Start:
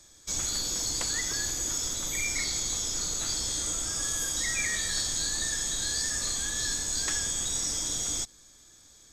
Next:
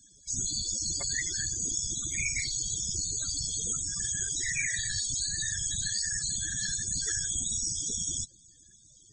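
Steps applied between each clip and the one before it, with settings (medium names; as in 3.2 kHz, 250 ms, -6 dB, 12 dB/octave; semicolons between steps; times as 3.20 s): whisper effect; loudest bins only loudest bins 64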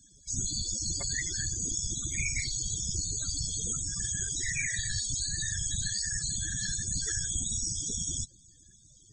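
bass shelf 250 Hz +7 dB; trim -1.5 dB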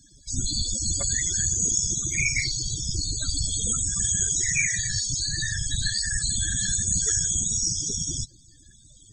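drifting ripple filter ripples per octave 0.77, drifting -0.36 Hz, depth 9 dB; trim +5.5 dB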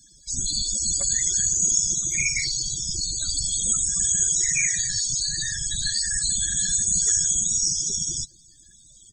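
treble shelf 3 kHz +9.5 dB; comb 5.4 ms, depth 38%; trim -5.5 dB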